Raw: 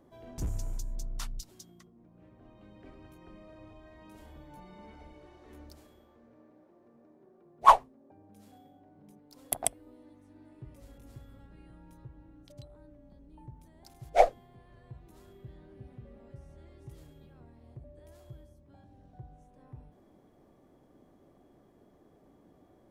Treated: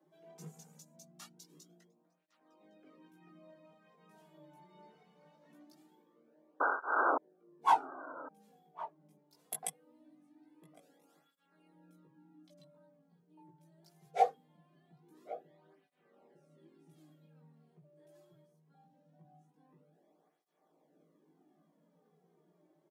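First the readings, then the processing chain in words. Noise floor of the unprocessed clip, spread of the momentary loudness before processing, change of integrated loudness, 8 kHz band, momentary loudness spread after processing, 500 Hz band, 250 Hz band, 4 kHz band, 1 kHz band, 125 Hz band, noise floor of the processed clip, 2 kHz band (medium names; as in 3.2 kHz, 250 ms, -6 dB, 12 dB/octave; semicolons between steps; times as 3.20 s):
-62 dBFS, 20 LU, -6.5 dB, -9.0 dB, 22 LU, -7.5 dB, -4.0 dB, -9.0 dB, -5.0 dB, -15.5 dB, -74 dBFS, +4.5 dB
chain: chorus voices 6, 0.53 Hz, delay 18 ms, depth 1.4 ms; steep high-pass 150 Hz 96 dB/octave; comb 6.5 ms, depth 32%; painted sound noise, 6.60–7.18 s, 260–1600 Hz -24 dBFS; echo from a far wall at 190 m, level -14 dB; cancelling through-zero flanger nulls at 0.22 Hz, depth 4.3 ms; trim -3.5 dB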